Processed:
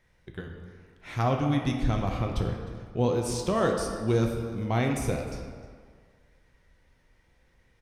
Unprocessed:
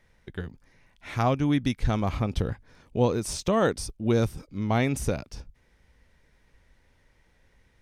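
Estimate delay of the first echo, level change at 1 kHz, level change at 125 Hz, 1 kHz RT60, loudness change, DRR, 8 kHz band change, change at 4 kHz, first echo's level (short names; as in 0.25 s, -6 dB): 0.307 s, -1.0 dB, -0.5 dB, 1.9 s, -1.0 dB, 2.0 dB, -2.5 dB, -2.0 dB, -19.0 dB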